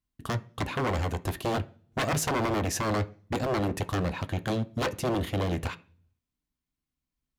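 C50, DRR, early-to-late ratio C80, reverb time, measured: 20.0 dB, 10.0 dB, 25.0 dB, 0.45 s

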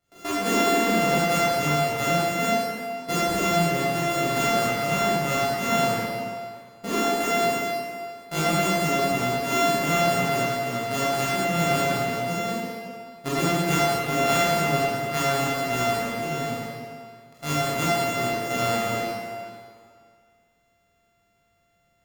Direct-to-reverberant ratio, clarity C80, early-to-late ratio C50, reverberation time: -10.5 dB, -2.5 dB, -5.0 dB, 2.1 s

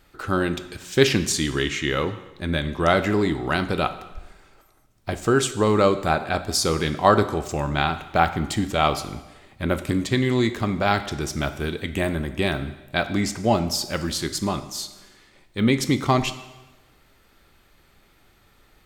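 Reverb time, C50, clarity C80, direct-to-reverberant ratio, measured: 1.1 s, 13.0 dB, 14.5 dB, 10.5 dB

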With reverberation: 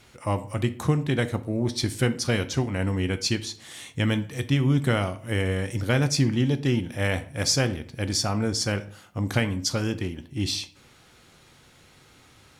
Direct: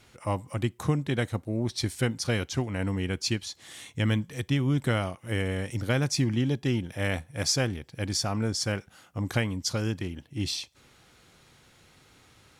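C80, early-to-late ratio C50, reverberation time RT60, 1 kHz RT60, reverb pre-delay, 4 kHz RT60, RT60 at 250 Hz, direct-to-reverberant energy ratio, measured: 19.5 dB, 16.0 dB, 0.50 s, 0.50 s, 9 ms, 0.35 s, 0.55 s, 10.5 dB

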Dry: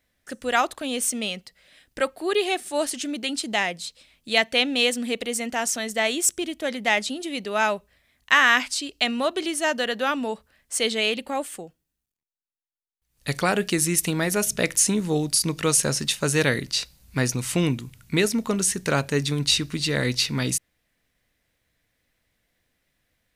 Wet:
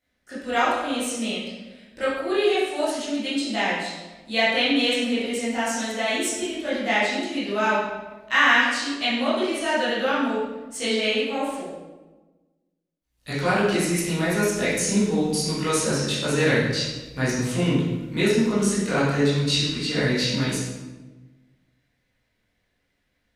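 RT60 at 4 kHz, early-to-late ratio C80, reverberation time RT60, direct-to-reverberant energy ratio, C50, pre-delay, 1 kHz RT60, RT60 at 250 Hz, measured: 0.80 s, 2.5 dB, 1.2 s, -11.5 dB, -1.0 dB, 15 ms, 1.1 s, 1.5 s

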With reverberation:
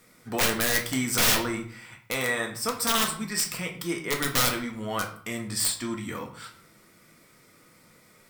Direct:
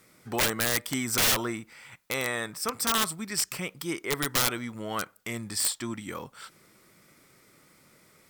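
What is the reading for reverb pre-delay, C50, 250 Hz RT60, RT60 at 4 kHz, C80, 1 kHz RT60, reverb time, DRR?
4 ms, 9.0 dB, 0.70 s, 0.40 s, 14.0 dB, 0.55 s, 0.55 s, 1.5 dB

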